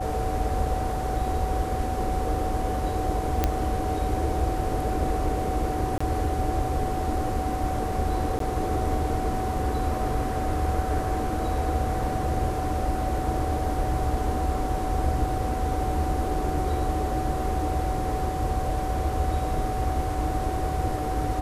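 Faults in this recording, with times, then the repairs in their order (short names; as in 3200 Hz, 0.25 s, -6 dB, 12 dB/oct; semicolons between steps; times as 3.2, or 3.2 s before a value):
tone 750 Hz -30 dBFS
3.44 pop -8 dBFS
5.98–6 gap 25 ms
8.39–8.4 gap 13 ms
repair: de-click; notch 750 Hz, Q 30; interpolate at 5.98, 25 ms; interpolate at 8.39, 13 ms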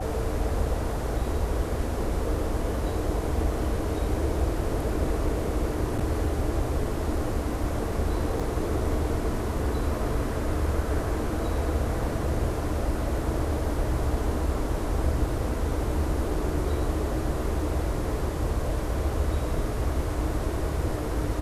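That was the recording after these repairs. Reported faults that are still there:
none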